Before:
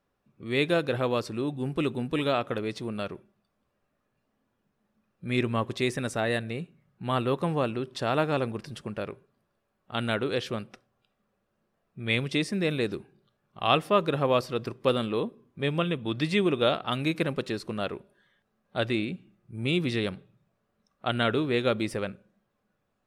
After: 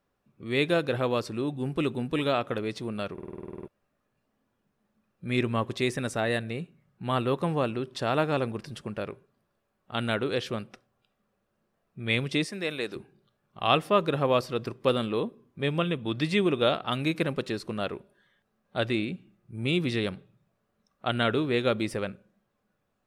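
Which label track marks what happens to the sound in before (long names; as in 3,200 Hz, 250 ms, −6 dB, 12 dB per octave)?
3.130000	3.130000	stutter in place 0.05 s, 11 plays
12.450000	12.960000	high-pass filter 580 Hz 6 dB per octave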